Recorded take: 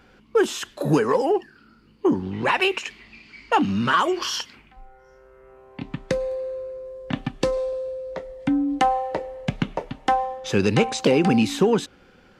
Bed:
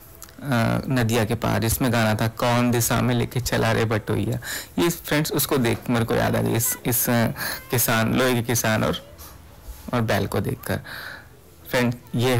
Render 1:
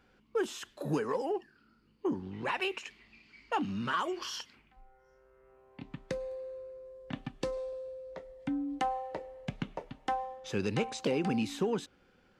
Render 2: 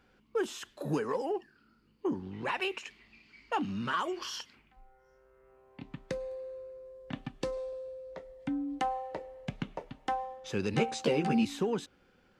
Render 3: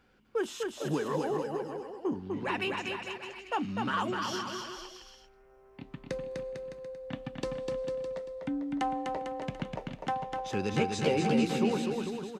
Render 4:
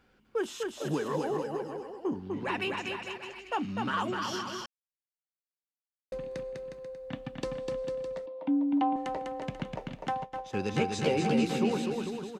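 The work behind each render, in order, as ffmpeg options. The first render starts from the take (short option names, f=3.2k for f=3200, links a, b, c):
-af "volume=-12.5dB"
-filter_complex "[0:a]asettb=1/sr,asplit=3[a][b][c];[a]atrim=end=10.724[d];[b]atrim=start=10.72:end=11.45,asetpts=PTS-STARTPTS,afade=t=in:d=0.004:c=qsin,afade=t=out:st=0.726:d=0.004:c=qsin,asplit=2[e][f];[f]adelay=13,volume=-2dB[g];[e][g]amix=inputs=2:normalize=0,atrim=end_sample=32193[h];[c]atrim=start=11.446[i];[d][h]acrossfade=d=0.004:c1=hsin:c2=qsin[j];[j][i]acrossfade=d=0.004:c1=qsin:c2=hsin"
-af "aecho=1:1:250|450|610|738|840.4:0.631|0.398|0.251|0.158|0.1"
-filter_complex "[0:a]asettb=1/sr,asplit=3[a][b][c];[a]atrim=end=8.264[d];[b]atrim=start=8.26:end=8.96,asetpts=PTS-STARTPTS,afade=t=in:d=0.004:c=qsin,afade=t=out:st=0.696:d=0.004:c=qsin,highpass=250,equalizer=f=290:t=q:w=4:g=10,equalizer=f=430:t=q:w=4:g=-8,equalizer=f=610:t=q:w=4:g=4,equalizer=f=930:t=q:w=4:g=8,equalizer=f=1.4k:t=q:w=4:g=-8,equalizer=f=1.9k:t=q:w=4:g=-10,lowpass=f=3.4k:w=0.5412,lowpass=f=3.4k:w=1.3066[e];[c]atrim=start=8.956[f];[d][e]acrossfade=d=0.004:c1=hsin:c2=qsin[g];[g][f]acrossfade=d=0.004:c1=qsin:c2=hsin,asplit=3[h][i][j];[h]afade=t=out:st=10.23:d=0.02[k];[i]agate=range=-33dB:threshold=-33dB:ratio=3:release=100:detection=peak,afade=t=in:st=10.23:d=0.02,afade=t=out:st=10.75:d=0.02[l];[j]afade=t=in:st=10.75:d=0.02[m];[k][l][m]amix=inputs=3:normalize=0,asplit=3[n][o][p];[n]atrim=end=4.66,asetpts=PTS-STARTPTS,afade=t=out:st=4.656:d=0.004:c=hsin[q];[o]atrim=start=4.66:end=6.12,asetpts=PTS-STARTPTS,volume=0[r];[p]atrim=start=6.12,asetpts=PTS-STARTPTS,afade=t=in:d=0.004:c=hsin[s];[q][r][s]concat=n=3:v=0:a=1"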